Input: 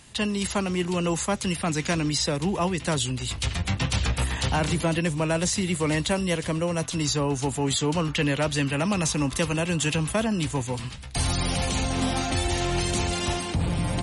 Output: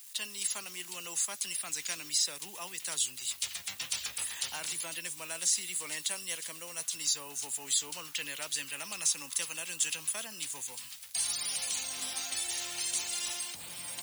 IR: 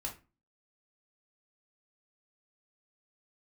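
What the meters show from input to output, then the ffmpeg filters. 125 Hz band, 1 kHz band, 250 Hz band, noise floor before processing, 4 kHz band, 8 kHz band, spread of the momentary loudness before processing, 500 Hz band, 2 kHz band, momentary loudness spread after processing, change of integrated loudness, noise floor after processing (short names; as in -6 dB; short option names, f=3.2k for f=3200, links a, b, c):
-34.0 dB, -17.5 dB, -29.0 dB, -36 dBFS, -5.0 dB, +0.5 dB, 3 LU, -22.5 dB, -10.5 dB, 8 LU, -7.5 dB, -48 dBFS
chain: -af "acrusher=bits=7:mix=0:aa=0.000001,aderivative"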